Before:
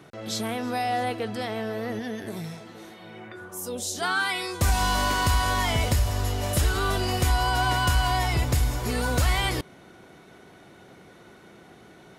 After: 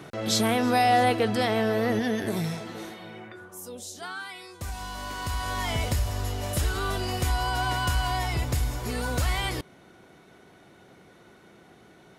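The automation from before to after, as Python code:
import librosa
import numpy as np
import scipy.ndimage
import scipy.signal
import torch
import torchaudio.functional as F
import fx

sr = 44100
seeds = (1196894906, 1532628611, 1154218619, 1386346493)

y = fx.gain(x, sr, db=fx.line((2.81, 6.0), (3.49, -5.0), (4.31, -13.0), (4.93, -13.0), (5.73, -3.5)))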